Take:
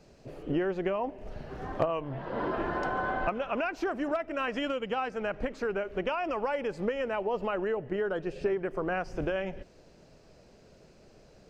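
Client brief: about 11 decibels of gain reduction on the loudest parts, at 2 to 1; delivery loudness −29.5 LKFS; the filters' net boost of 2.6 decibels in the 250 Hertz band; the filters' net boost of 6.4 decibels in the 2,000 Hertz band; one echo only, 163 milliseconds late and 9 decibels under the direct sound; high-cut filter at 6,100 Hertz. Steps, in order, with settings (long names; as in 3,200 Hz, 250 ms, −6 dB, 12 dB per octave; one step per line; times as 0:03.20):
low-pass filter 6,100 Hz
parametric band 250 Hz +3.5 dB
parametric band 2,000 Hz +9 dB
downward compressor 2 to 1, threshold −42 dBFS
single-tap delay 163 ms −9 dB
level +9 dB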